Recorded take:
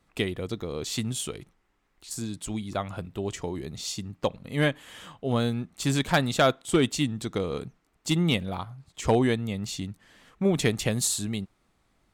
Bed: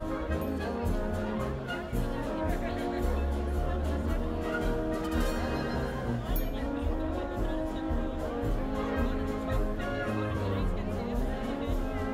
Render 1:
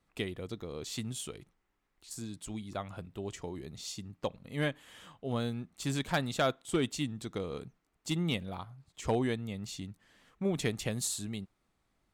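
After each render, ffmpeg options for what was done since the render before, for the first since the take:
-af "volume=0.398"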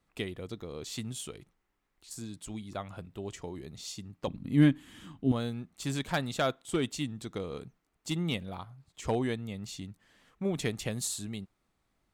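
-filter_complex "[0:a]asettb=1/sr,asplit=3[s0][s1][s2];[s0]atrim=end=4.274[s3];[s1]atrim=start=4.27:end=5.32,asetpts=PTS-STARTPTS,afade=t=in:d=0.004:c=qsin,afade=t=out:st=1.046:d=0.004:c=qsin,lowshelf=f=390:t=q:w=3:g=9[s4];[s2]atrim=start=5.316[s5];[s3][s4]acrossfade=d=0.004:c1=hsin:c2=qsin[s6];[s6][s5]acrossfade=d=0.004:c1=qsin:c2=hsin"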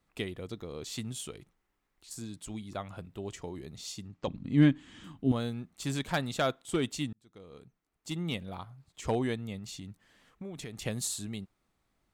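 -filter_complex "[0:a]asettb=1/sr,asplit=3[s0][s1][s2];[s0]atrim=end=4.074[s3];[s1]atrim=start=4.07:end=5.04,asetpts=PTS-STARTPTS,afade=t=in:d=0.004:c=qsin,afade=t=out:st=0.966:d=0.004:c=qsin,lowpass=f=7500:w=0.5412,lowpass=f=7500:w=1.3066[s4];[s2]atrim=start=5.036[s5];[s3][s4]acrossfade=d=0.004:c1=hsin:c2=qsin[s6];[s6][s5]acrossfade=d=0.004:c1=qsin:c2=hsin,asettb=1/sr,asplit=3[s7][s8][s9];[s7]atrim=end=9.584[s10];[s8]atrim=start=9.58:end=10.82,asetpts=PTS-STARTPTS,afade=t=in:d=0.004:c=qsin,afade=t=out:st=1.236:d=0.004:c=qsin,acompressor=threshold=0.0126:ratio=6:attack=3.2:release=140:knee=1:detection=peak[s11];[s9]atrim=start=10.816[s12];[s10][s11]acrossfade=d=0.004:c1=hsin:c2=qsin[s13];[s13][s12]acrossfade=d=0.004:c1=qsin:c2=hsin,asplit=2[s14][s15];[s14]atrim=end=7.13,asetpts=PTS-STARTPTS,afade=t=out:st=7.126:d=0.004:c=hsin[s16];[s15]atrim=start=7.13,asetpts=PTS-STARTPTS,afade=t=in:d=1.51[s17];[s16][s17]concat=n=2:v=0:a=1"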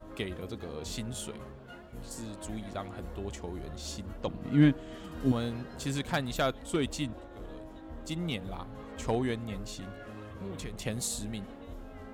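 -filter_complex "[1:a]volume=0.211[s0];[0:a][s0]amix=inputs=2:normalize=0"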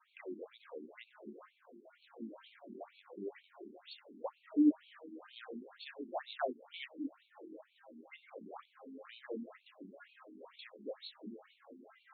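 -af "flanger=delay=20:depth=6.5:speed=0.62,afftfilt=real='re*between(b*sr/1024,270*pow(3200/270,0.5+0.5*sin(2*PI*2.1*pts/sr))/1.41,270*pow(3200/270,0.5+0.5*sin(2*PI*2.1*pts/sr))*1.41)':imag='im*between(b*sr/1024,270*pow(3200/270,0.5+0.5*sin(2*PI*2.1*pts/sr))/1.41,270*pow(3200/270,0.5+0.5*sin(2*PI*2.1*pts/sr))*1.41)':win_size=1024:overlap=0.75"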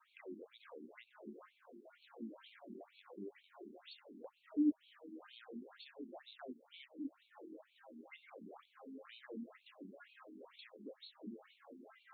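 -filter_complex "[0:a]acrossover=split=300|3000[s0][s1][s2];[s1]acompressor=threshold=0.00178:ratio=6[s3];[s0][s3][s2]amix=inputs=3:normalize=0,acrossover=split=1100[s4][s5];[s5]alimiter=level_in=11.9:limit=0.0631:level=0:latency=1:release=327,volume=0.0841[s6];[s4][s6]amix=inputs=2:normalize=0"

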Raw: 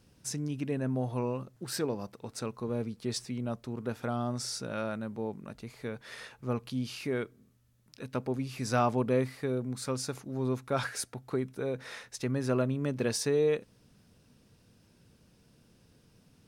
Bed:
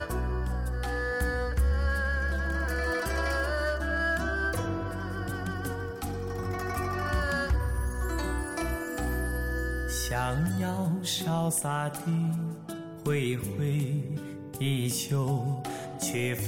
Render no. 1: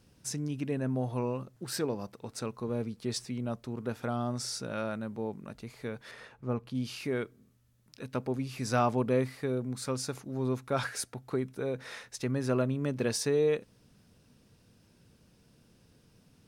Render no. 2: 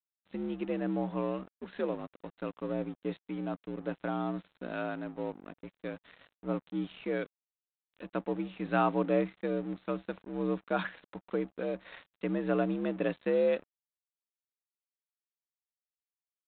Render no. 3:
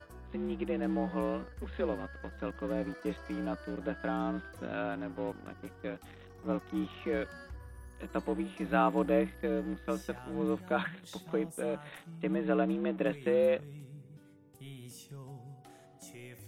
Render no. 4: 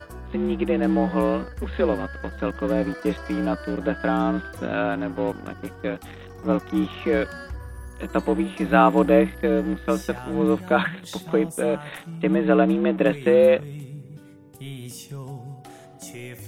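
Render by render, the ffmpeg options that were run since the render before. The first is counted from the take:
-filter_complex "[0:a]asettb=1/sr,asplit=3[s0][s1][s2];[s0]atrim=end=6.114[s3];[s1]atrim=start=6.11:end=6.75,asetpts=PTS-STARTPTS,afade=t=in:d=0.004:c=qsin,afade=t=out:st=0.636:d=0.004:c=qsin,highshelf=f=2500:g=-11[s4];[s2]atrim=start=6.746[s5];[s3][s4]acrossfade=d=0.004:c1=hsin:c2=qsin[s6];[s6][s5]acrossfade=d=0.004:c1=qsin:c2=hsin"
-af "afreqshift=60,aresample=8000,aeval=exprs='sgn(val(0))*max(abs(val(0))-0.00376,0)':c=same,aresample=44100"
-filter_complex "[1:a]volume=0.106[s0];[0:a][s0]amix=inputs=2:normalize=0"
-af "volume=3.76"

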